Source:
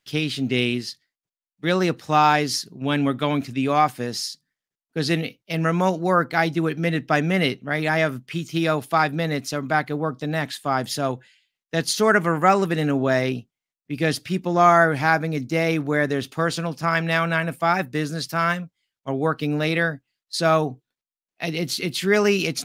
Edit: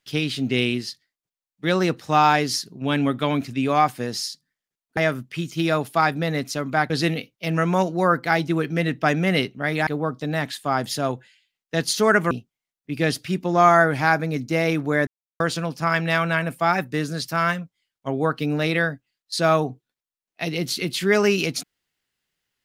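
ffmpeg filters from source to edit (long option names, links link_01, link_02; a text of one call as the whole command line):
ffmpeg -i in.wav -filter_complex "[0:a]asplit=7[link_01][link_02][link_03][link_04][link_05][link_06][link_07];[link_01]atrim=end=4.972[link_08];[link_02]atrim=start=7.938:end=9.872[link_09];[link_03]atrim=start=4.968:end=7.942[link_10];[link_04]atrim=start=9.868:end=12.312[link_11];[link_05]atrim=start=13.318:end=16.08,asetpts=PTS-STARTPTS,afade=type=out:start_time=2.758:duration=0.004:curve=hsin[link_12];[link_06]atrim=start=16.08:end=16.41,asetpts=PTS-STARTPTS,volume=0[link_13];[link_07]atrim=start=16.41,asetpts=PTS-STARTPTS,afade=type=in:duration=0.004:curve=hsin[link_14];[link_08][link_09]acrossfade=duration=0.004:curve1=hsin:curve2=hsin[link_15];[link_15][link_10]acrossfade=duration=0.004:curve1=hsin:curve2=hsin[link_16];[link_16][link_11]acrossfade=duration=0.004:curve1=hsin:curve2=hsin[link_17];[link_12][link_13][link_14]concat=n=3:v=0:a=1[link_18];[link_17][link_18]acrossfade=duration=0.004:curve1=hsin:curve2=hsin" out.wav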